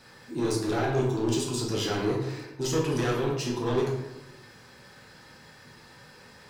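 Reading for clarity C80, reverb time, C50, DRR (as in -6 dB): 6.5 dB, 0.95 s, 3.5 dB, -3.5 dB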